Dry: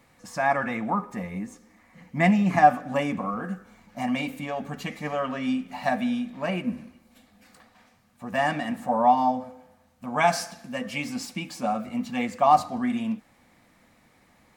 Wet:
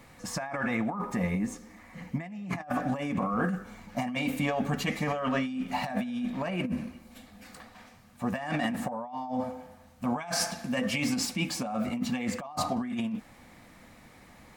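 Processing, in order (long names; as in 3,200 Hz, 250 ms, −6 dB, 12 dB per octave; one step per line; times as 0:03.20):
low-shelf EQ 83 Hz +5.5 dB
compressor whose output falls as the input rises −32 dBFS, ratio −1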